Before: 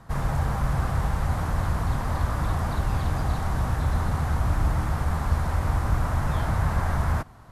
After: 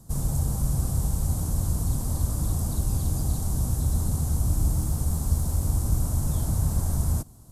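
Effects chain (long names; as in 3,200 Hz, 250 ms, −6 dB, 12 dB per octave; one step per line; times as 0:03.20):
0:04.58–0:05.70: bit-depth reduction 12 bits, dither none
drawn EQ curve 290 Hz 0 dB, 1,900 Hz −21 dB, 8,000 Hz +13 dB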